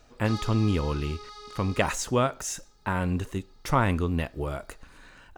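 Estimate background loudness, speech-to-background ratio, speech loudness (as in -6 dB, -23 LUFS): -42.0 LUFS, 14.0 dB, -28.0 LUFS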